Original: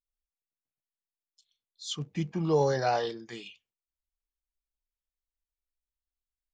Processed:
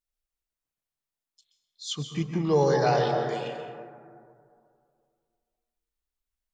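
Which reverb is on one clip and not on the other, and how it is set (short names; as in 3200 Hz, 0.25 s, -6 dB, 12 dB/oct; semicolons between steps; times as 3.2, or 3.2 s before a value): plate-style reverb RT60 2.3 s, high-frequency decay 0.25×, pre-delay 0.12 s, DRR 3.5 dB; gain +2.5 dB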